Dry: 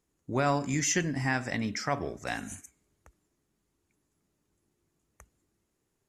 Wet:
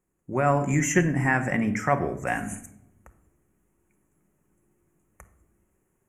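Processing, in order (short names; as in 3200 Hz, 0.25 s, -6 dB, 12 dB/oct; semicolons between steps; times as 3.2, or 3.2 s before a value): Butterworth band-stop 4300 Hz, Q 0.85; AGC gain up to 6.5 dB; shoebox room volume 2100 m³, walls furnished, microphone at 1 m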